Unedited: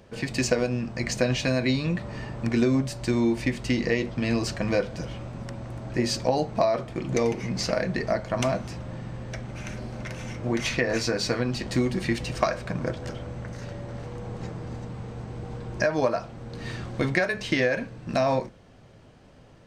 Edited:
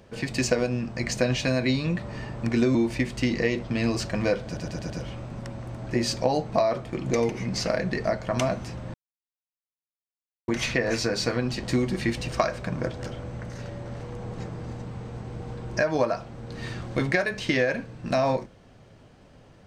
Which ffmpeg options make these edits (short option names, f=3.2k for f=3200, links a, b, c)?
-filter_complex "[0:a]asplit=8[a][b][c][d][e][f][g][h];[a]atrim=end=2.752[i];[b]atrim=start=3.218:end=5.042[j];[c]atrim=start=4.928:end=5.042[k];[d]atrim=start=4.928:end=5.042[l];[e]atrim=start=4.928:end=5.042[m];[f]atrim=start=4.928:end=8.97,asetpts=PTS-STARTPTS,afade=t=out:st=4.038:d=0.004:c=hsin[n];[g]atrim=start=8.97:end=10.51,asetpts=PTS-STARTPTS,volume=0[o];[h]atrim=start=10.51,asetpts=PTS-STARTPTS,afade=t=in:d=0.004:c=hsin[p];[i][j]acrossfade=d=0.004:c1=hsin:c2=hsin[q];[q][k]acrossfade=d=0.004:c1=hsin:c2=hsin[r];[r][l]acrossfade=d=0.004:c1=hsin:c2=hsin[s];[s][m]acrossfade=d=0.004:c1=hsin:c2=hsin[t];[n][o][p]concat=n=3:v=0:a=1[u];[t][u]acrossfade=d=0.004:c1=hsin:c2=hsin"